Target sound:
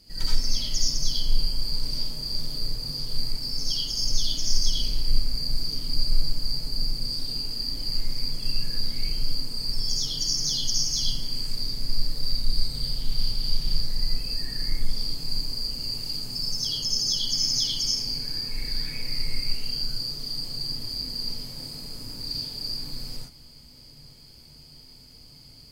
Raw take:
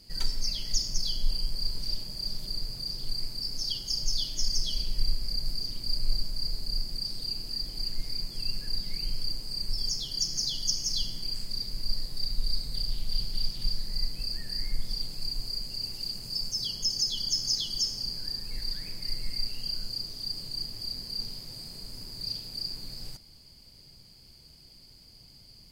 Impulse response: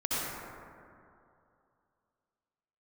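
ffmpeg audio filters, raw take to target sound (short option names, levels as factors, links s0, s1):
-filter_complex "[0:a]asettb=1/sr,asplit=3[s0][s1][s2];[s0]atrim=end=17.284[s3];[s1]atrim=start=17.28:end=19.64,asetpts=PTS-STARTPTS,afade=t=in:d=0.004:c=qsin,afade=t=out:st=2.356:d=0.004:c=qsin,equalizer=f=2300:t=o:w=0.25:g=9[s4];[s2]atrim=start=19.636[s5];[s3][s4]acrossfade=d=0.004:c1=hsin:c2=qsin[s6];[s6][s5]acrossfade=d=0.004:c1=qsin:c2=hsin[s7];[1:a]atrim=start_sample=2205,afade=t=out:st=0.18:d=0.01,atrim=end_sample=8379[s8];[s7][s8]afir=irnorm=-1:irlink=0"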